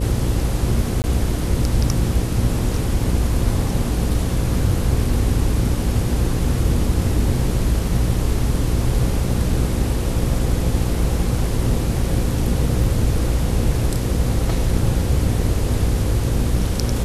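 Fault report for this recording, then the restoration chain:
buzz 60 Hz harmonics 9 -23 dBFS
1.02–1.04 s: dropout 19 ms
12.84 s: dropout 2.1 ms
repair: de-hum 60 Hz, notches 9; interpolate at 1.02 s, 19 ms; interpolate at 12.84 s, 2.1 ms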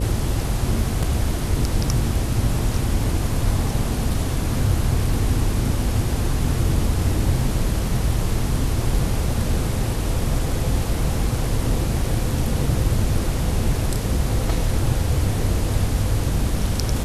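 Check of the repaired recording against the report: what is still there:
nothing left

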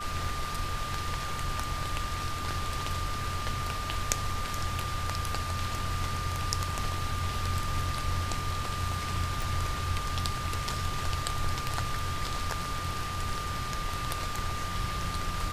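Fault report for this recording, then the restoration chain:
whine 1.2 kHz -36 dBFS
9.42 s: pop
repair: de-click; band-stop 1.2 kHz, Q 30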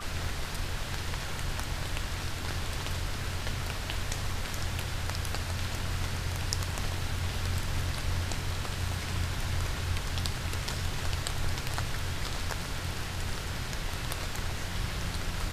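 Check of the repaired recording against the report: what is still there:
nothing left

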